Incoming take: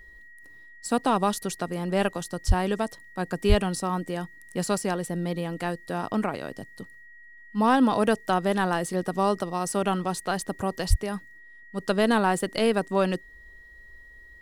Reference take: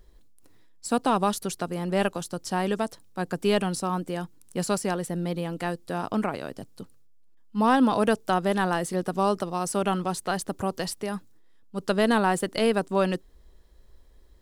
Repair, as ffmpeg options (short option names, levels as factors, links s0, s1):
-filter_complex "[0:a]bandreject=f=1900:w=30,asplit=3[s0][s1][s2];[s0]afade=t=out:st=2.47:d=0.02[s3];[s1]highpass=f=140:w=0.5412,highpass=f=140:w=1.3066,afade=t=in:st=2.47:d=0.02,afade=t=out:st=2.59:d=0.02[s4];[s2]afade=t=in:st=2.59:d=0.02[s5];[s3][s4][s5]amix=inputs=3:normalize=0,asplit=3[s6][s7][s8];[s6]afade=t=out:st=3.48:d=0.02[s9];[s7]highpass=f=140:w=0.5412,highpass=f=140:w=1.3066,afade=t=in:st=3.48:d=0.02,afade=t=out:st=3.6:d=0.02[s10];[s8]afade=t=in:st=3.6:d=0.02[s11];[s9][s10][s11]amix=inputs=3:normalize=0,asplit=3[s12][s13][s14];[s12]afade=t=out:st=10.89:d=0.02[s15];[s13]highpass=f=140:w=0.5412,highpass=f=140:w=1.3066,afade=t=in:st=10.89:d=0.02,afade=t=out:st=11.01:d=0.02[s16];[s14]afade=t=in:st=11.01:d=0.02[s17];[s15][s16][s17]amix=inputs=3:normalize=0"